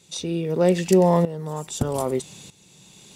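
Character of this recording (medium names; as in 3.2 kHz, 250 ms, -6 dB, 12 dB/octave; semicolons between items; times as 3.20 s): tremolo saw up 0.8 Hz, depth 80%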